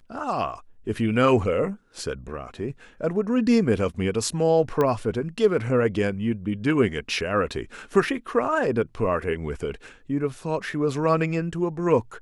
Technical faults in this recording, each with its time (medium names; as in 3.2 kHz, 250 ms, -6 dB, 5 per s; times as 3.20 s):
4.81 s: pop -12 dBFS